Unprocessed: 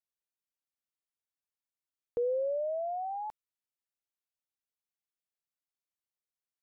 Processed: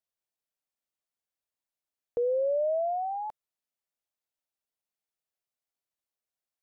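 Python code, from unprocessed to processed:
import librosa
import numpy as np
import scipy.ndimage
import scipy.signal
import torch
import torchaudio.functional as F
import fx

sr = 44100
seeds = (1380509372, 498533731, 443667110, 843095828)

y = fx.peak_eq(x, sr, hz=640.0, db=6.0, octaves=0.74)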